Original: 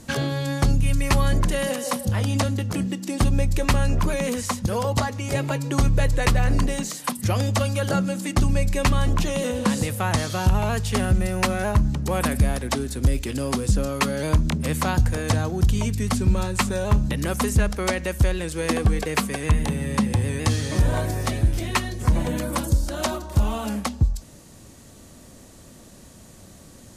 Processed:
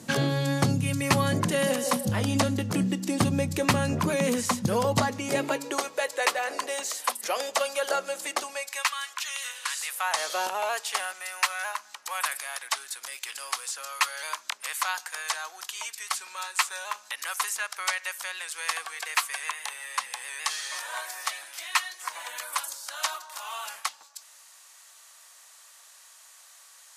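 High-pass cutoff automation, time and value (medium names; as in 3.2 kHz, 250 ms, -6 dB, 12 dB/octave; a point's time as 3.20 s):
high-pass 24 dB/octave
5.07 s 120 Hz
5.89 s 490 Hz
8.37 s 490 Hz
9.01 s 1.3 kHz
9.79 s 1.3 kHz
10.39 s 460 Hz
11.28 s 980 Hz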